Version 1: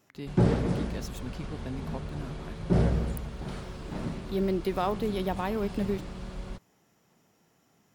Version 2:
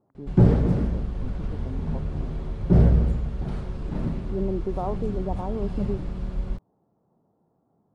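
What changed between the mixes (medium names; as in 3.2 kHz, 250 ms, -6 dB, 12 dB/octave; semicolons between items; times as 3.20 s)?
speech: add inverse Chebyshev low-pass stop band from 3.2 kHz, stop band 60 dB; background: add tilt EQ -2.5 dB/octave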